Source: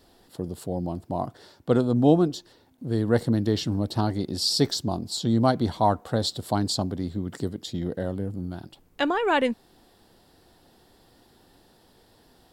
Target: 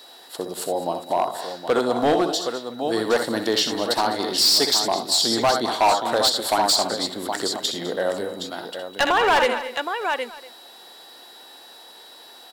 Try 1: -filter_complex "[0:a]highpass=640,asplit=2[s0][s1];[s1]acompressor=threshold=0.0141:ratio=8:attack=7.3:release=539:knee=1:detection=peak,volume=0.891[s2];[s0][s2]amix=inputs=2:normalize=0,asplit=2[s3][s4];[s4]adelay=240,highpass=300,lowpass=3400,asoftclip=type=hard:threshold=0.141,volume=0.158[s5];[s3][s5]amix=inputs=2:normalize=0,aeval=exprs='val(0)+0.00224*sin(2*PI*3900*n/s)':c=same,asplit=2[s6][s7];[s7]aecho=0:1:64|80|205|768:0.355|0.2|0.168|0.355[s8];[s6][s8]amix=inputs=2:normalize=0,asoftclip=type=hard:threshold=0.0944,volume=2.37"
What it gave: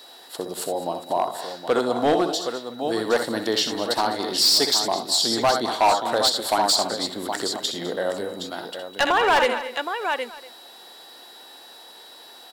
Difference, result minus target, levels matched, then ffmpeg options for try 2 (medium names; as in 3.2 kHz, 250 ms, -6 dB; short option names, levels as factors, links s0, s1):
compression: peak gain reduction +5.5 dB
-filter_complex "[0:a]highpass=640,asplit=2[s0][s1];[s1]acompressor=threshold=0.0299:ratio=8:attack=7.3:release=539:knee=1:detection=peak,volume=0.891[s2];[s0][s2]amix=inputs=2:normalize=0,asplit=2[s3][s4];[s4]adelay=240,highpass=300,lowpass=3400,asoftclip=type=hard:threshold=0.141,volume=0.158[s5];[s3][s5]amix=inputs=2:normalize=0,aeval=exprs='val(0)+0.00224*sin(2*PI*3900*n/s)':c=same,asplit=2[s6][s7];[s7]aecho=0:1:64|80|205|768:0.355|0.2|0.168|0.355[s8];[s6][s8]amix=inputs=2:normalize=0,asoftclip=type=hard:threshold=0.0944,volume=2.37"